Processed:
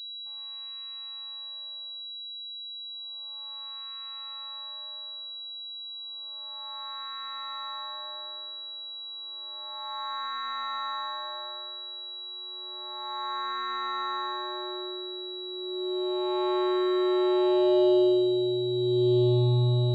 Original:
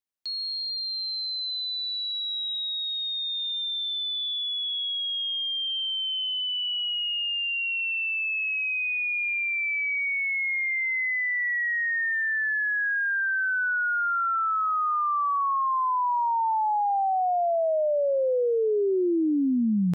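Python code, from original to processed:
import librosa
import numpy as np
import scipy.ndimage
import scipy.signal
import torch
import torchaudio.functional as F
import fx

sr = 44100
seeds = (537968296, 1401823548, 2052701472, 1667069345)

y = fx.clip_hard(x, sr, threshold_db=-34.0, at=(2.03, 2.64))
y = fx.dmg_crackle(y, sr, seeds[0], per_s=170.0, level_db=-56.0)
y = fx.vocoder(y, sr, bands=4, carrier='square', carrier_hz=122.0)
y = fx.filter_lfo_lowpass(y, sr, shape='sine', hz=0.31, low_hz=240.0, high_hz=1500.0, q=1.4)
y = fx.echo_multitap(y, sr, ms=(112, 381, 429, 465, 594, 699), db=(-4.0, -14.0, -11.5, -14.0, -19.0, -15.0))
y = fx.pwm(y, sr, carrier_hz=3900.0)
y = y * 10.0 ** (-3.5 / 20.0)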